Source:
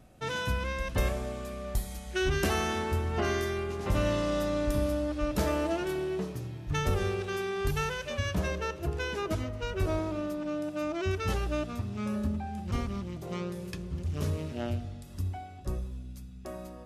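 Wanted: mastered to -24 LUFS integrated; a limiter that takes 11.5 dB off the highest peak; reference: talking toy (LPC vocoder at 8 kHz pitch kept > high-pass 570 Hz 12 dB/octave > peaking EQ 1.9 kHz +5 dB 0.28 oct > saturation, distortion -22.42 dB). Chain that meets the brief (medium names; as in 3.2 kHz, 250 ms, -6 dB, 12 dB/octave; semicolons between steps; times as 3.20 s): peak limiter -28.5 dBFS; LPC vocoder at 8 kHz pitch kept; high-pass 570 Hz 12 dB/octave; peaking EQ 1.9 kHz +5 dB 0.28 oct; saturation -27 dBFS; trim +19.5 dB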